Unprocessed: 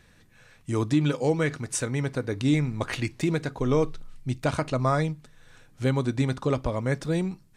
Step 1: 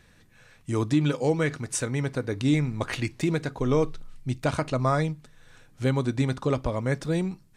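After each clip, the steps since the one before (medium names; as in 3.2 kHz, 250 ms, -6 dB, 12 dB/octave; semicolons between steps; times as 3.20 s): no audible change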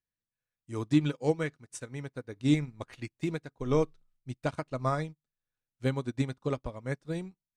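upward expansion 2.5:1, over -45 dBFS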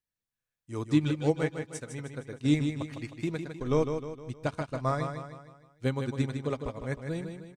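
feedback delay 155 ms, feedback 46%, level -7 dB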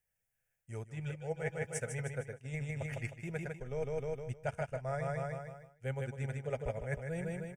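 reverse; compression 16:1, threshold -38 dBFS, peak gain reduction 20.5 dB; reverse; static phaser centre 1.1 kHz, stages 6; trim +8 dB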